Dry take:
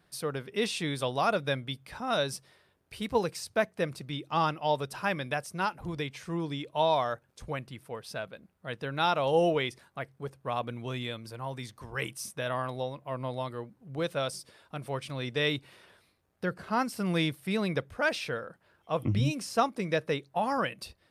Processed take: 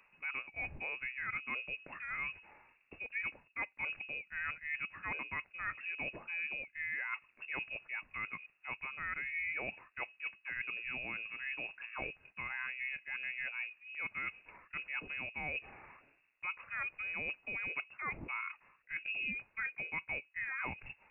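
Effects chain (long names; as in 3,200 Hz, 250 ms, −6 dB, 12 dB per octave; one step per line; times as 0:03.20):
reversed playback
downward compressor 6 to 1, threshold −41 dBFS, peak gain reduction 19.5 dB
reversed playback
voice inversion scrambler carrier 2,700 Hz
level +3 dB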